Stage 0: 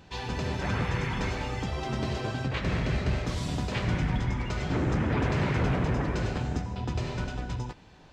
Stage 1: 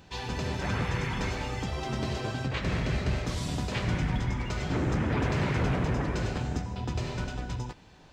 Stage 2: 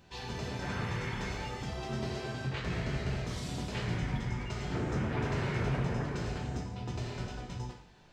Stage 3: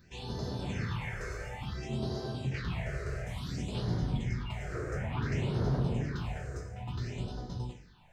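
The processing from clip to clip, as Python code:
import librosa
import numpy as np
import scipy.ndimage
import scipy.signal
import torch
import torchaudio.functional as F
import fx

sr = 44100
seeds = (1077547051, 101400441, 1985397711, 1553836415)

y1 = fx.high_shelf(x, sr, hz=6100.0, db=5.5)
y1 = F.gain(torch.from_numpy(y1), -1.0).numpy()
y2 = fx.rev_plate(y1, sr, seeds[0], rt60_s=0.51, hf_ratio=1.0, predelay_ms=0, drr_db=0.5)
y2 = F.gain(torch.from_numpy(y2), -7.5).numpy()
y3 = fx.phaser_stages(y2, sr, stages=6, low_hz=220.0, high_hz=2400.0, hz=0.57, feedback_pct=25)
y3 = F.gain(torch.from_numpy(y3), 1.0).numpy()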